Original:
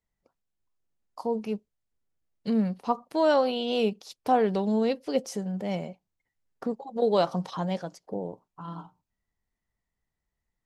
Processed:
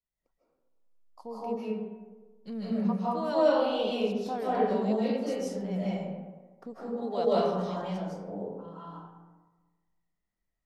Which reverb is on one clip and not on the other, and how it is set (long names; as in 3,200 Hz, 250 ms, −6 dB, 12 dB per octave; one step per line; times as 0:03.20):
comb and all-pass reverb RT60 1.3 s, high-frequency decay 0.45×, pre-delay 115 ms, DRR −9.5 dB
level −12.5 dB